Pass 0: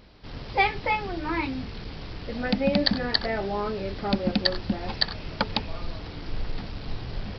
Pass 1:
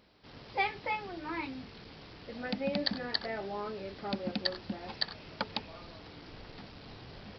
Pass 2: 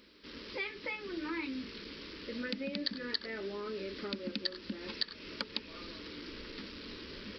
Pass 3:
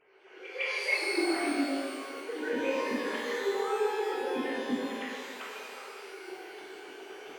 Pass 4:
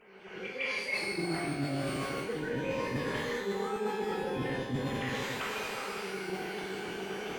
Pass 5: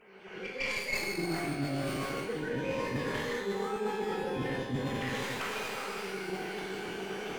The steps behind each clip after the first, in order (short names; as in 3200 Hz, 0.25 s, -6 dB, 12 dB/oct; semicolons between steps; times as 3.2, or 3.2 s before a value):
HPF 190 Hz 6 dB/oct; gain -8.5 dB
compressor 3:1, threshold -40 dBFS, peak gain reduction 11.5 dB; low shelf 81 Hz -7.5 dB; fixed phaser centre 310 Hz, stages 4; gain +7 dB
sine-wave speech; pre-echo 0.156 s -15 dB; shimmer reverb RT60 1.9 s, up +12 st, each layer -8 dB, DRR -7.5 dB; gain -1.5 dB
octaver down 1 oct, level 0 dB; reverse; compressor 6:1, threshold -38 dBFS, peak gain reduction 14.5 dB; reverse; gain +7 dB
tracing distortion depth 0.07 ms